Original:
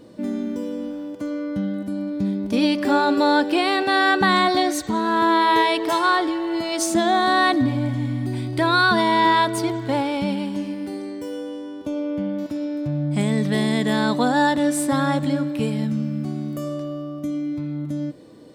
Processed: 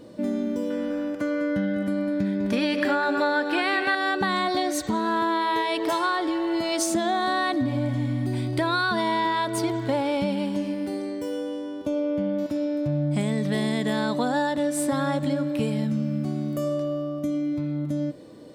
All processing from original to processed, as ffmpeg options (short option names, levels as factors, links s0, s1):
-filter_complex "[0:a]asettb=1/sr,asplit=3[s0][s1][s2];[s0]atrim=end=0.704[s3];[s1]atrim=start=0.7:end=3.95,asetpts=PTS-STARTPTS,afade=t=in:d=0.004:c=qsin,afade=t=out:st=3.246:d=0.004:c=qsin,equalizer=f=1700:t=o:w=1.1:g=11.5,aecho=1:1:201:0.335,atrim=end_sample=143325[s4];[s2]atrim=start=3.946[s5];[s3][s4]acrossfade=d=0.004:c1=hsin:c2=qsin[s6];[s6][s5]acrossfade=d=0.004:c1=qsin:c2=hsin,equalizer=f=580:w=7.8:g=5,acompressor=threshold=0.0891:ratio=6"